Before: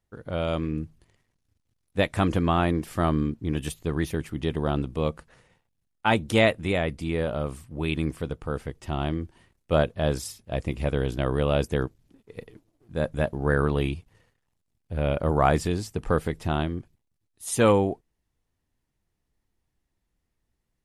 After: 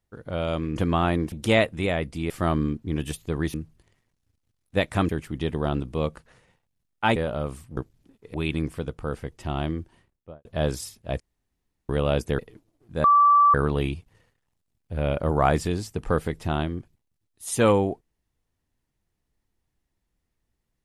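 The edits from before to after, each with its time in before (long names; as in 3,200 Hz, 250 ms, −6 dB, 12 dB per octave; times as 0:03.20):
0:00.76–0:02.31: move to 0:04.11
0:06.18–0:07.16: move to 0:02.87
0:09.23–0:09.88: fade out and dull
0:10.63–0:11.32: fill with room tone
0:11.82–0:12.39: move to 0:07.77
0:13.04–0:13.54: beep over 1,160 Hz −13 dBFS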